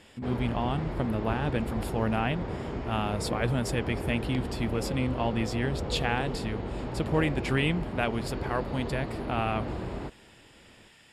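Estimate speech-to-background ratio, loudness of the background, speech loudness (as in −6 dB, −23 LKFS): 4.5 dB, −35.5 LKFS, −31.0 LKFS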